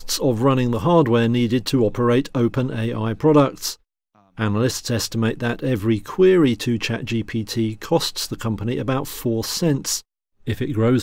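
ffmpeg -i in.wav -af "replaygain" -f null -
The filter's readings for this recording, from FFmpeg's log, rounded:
track_gain = -0.2 dB
track_peak = 0.430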